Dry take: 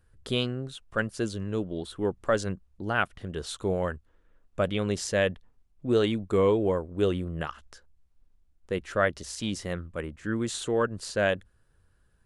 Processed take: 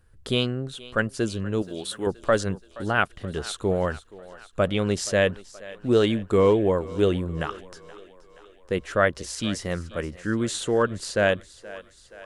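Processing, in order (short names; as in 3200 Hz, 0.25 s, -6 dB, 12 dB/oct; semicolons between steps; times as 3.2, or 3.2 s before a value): 1.62–2.07 tilt +3 dB/oct; thinning echo 0.475 s, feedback 63%, high-pass 330 Hz, level -18 dB; gain +4 dB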